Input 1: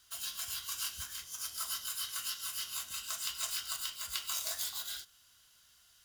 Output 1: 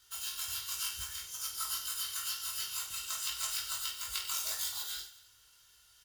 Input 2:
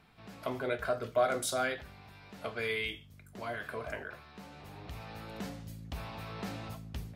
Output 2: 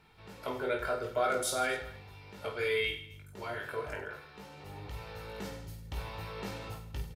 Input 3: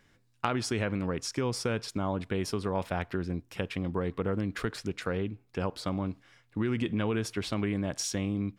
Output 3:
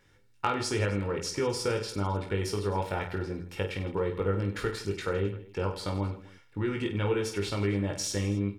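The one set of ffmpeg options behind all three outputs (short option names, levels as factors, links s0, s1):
-af "aecho=1:1:2.2:0.47,aecho=1:1:20|50|95|162.5|263.8:0.631|0.398|0.251|0.158|0.1,volume=0.841"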